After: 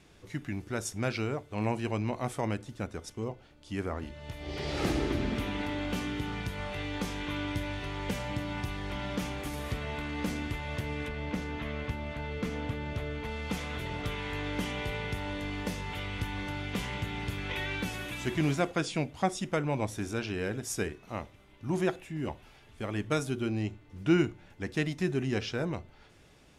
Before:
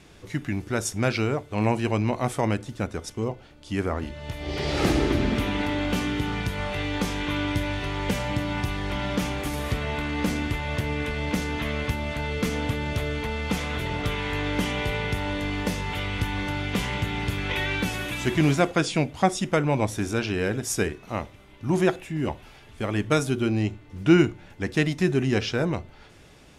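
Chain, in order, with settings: 11.08–13.25 high shelf 4600 Hz -11 dB; gain -7.5 dB

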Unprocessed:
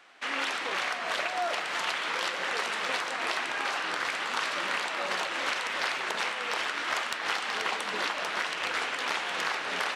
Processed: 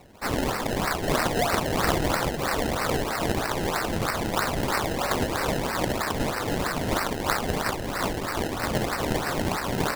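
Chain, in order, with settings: 0.94–2.17 tilt +2.5 dB/oct; 7.62–8.68 HPF 1100 Hz 12 dB/oct; decimation with a swept rate 26×, swing 100% 3.1 Hz; gain +5 dB

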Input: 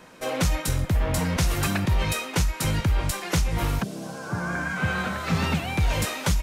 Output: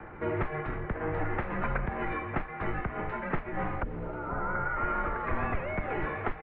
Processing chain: echo 0.316 s -19.5 dB; mistuned SSB -160 Hz 170–2200 Hz; three-band squash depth 40%; gain -2 dB

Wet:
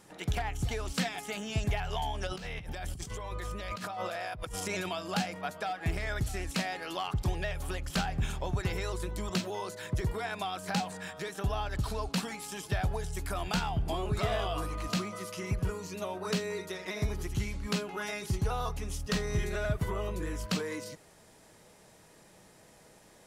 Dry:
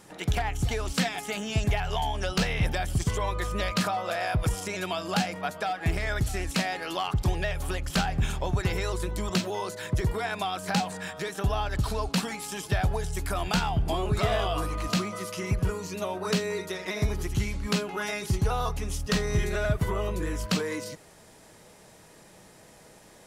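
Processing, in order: 2.27–4.89 negative-ratio compressor -33 dBFS, ratio -1; gain -5 dB

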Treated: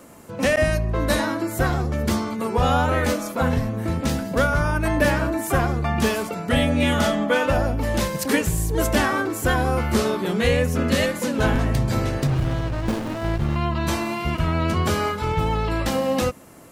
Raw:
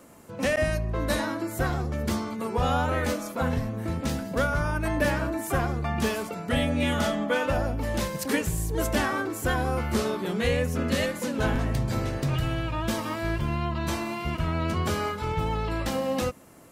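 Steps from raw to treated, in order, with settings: 12.27–13.56 running maximum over 33 samples; gain +5.5 dB

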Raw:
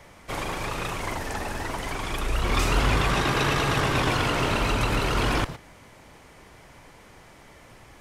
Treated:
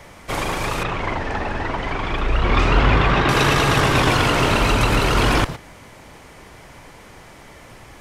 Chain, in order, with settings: 0.83–3.29 LPF 3100 Hz 12 dB/oct; gain +7 dB

